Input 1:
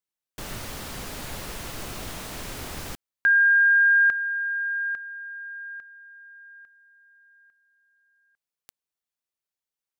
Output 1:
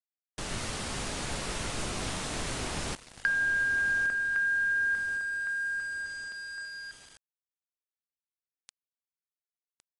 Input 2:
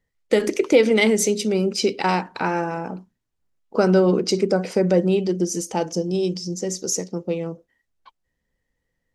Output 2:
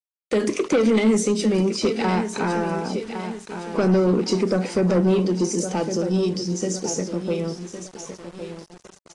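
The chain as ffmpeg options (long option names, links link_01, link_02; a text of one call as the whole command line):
ffmpeg -i in.wav -filter_complex "[0:a]highshelf=frequency=2600:gain=2,acrossover=split=690[link_01][link_02];[link_02]acompressor=threshold=-29dB:ratio=12:attack=30:release=56:knee=6:detection=peak[link_03];[link_01][link_03]amix=inputs=2:normalize=0,aecho=1:1:1110|2220|3330|4440:0.282|0.116|0.0474|0.0194,asoftclip=type=tanh:threshold=-15dB,adynamicequalizer=threshold=0.01:dfrequency=230:dqfactor=2.1:tfrequency=230:tqfactor=2.1:attack=5:release=100:ratio=0.438:range=3:mode=boostabove:tftype=bell,aeval=exprs='val(0)*gte(abs(val(0)),0.0106)':channel_layout=same" -ar 22050 -c:a aac -b:a 32k out.aac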